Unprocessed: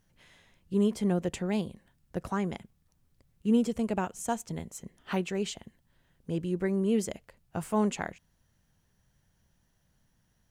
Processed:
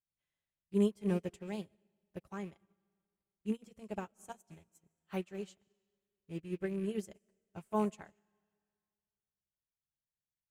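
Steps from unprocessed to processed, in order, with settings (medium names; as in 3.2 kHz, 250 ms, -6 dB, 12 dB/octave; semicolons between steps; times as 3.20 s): rattle on loud lows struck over -36 dBFS, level -38 dBFS; treble shelf 11 kHz +8.5 dB; comb of notches 240 Hz; algorithmic reverb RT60 2.4 s, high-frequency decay 0.85×, pre-delay 95 ms, DRR 13 dB; upward expansion 2.5:1, over -45 dBFS; trim -1 dB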